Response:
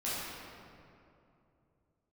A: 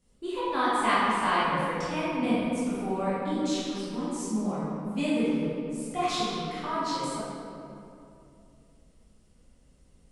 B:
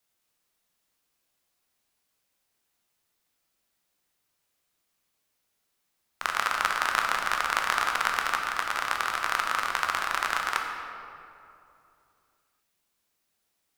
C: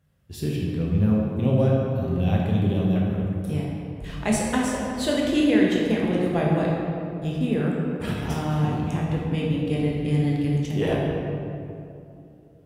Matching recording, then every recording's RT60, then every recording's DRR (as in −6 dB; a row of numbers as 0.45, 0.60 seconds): A; 2.7, 2.7, 2.7 seconds; −10.5, 1.5, −3.5 decibels